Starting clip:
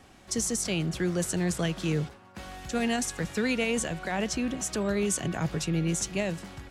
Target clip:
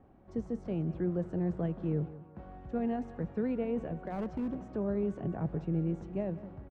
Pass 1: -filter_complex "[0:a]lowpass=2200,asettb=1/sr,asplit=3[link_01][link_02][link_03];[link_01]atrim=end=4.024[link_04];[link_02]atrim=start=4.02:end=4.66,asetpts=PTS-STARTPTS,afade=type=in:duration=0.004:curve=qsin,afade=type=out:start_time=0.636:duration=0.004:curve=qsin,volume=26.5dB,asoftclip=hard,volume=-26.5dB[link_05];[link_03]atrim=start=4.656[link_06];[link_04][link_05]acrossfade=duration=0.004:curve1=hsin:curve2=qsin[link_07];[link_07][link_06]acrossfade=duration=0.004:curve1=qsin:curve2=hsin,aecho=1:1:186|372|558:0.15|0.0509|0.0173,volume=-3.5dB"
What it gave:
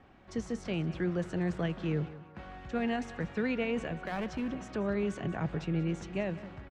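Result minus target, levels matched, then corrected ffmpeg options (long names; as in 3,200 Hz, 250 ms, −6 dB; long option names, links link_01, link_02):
2,000 Hz band +13.0 dB
-filter_complex "[0:a]lowpass=740,asettb=1/sr,asplit=3[link_01][link_02][link_03];[link_01]atrim=end=4.024[link_04];[link_02]atrim=start=4.02:end=4.66,asetpts=PTS-STARTPTS,afade=type=in:duration=0.004:curve=qsin,afade=type=out:start_time=0.636:duration=0.004:curve=qsin,volume=26.5dB,asoftclip=hard,volume=-26.5dB[link_05];[link_03]atrim=start=4.656[link_06];[link_04][link_05]acrossfade=duration=0.004:curve1=hsin:curve2=qsin[link_07];[link_07][link_06]acrossfade=duration=0.004:curve1=qsin:curve2=hsin,aecho=1:1:186|372|558:0.15|0.0509|0.0173,volume=-3.5dB"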